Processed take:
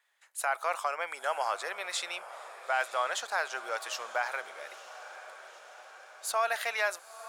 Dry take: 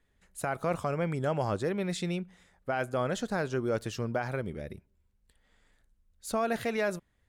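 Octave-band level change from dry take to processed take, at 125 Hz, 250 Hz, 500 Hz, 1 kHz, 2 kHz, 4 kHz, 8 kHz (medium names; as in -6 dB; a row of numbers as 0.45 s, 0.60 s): under -40 dB, under -25 dB, -5.0 dB, +4.0 dB, +5.5 dB, +5.5 dB, +5.5 dB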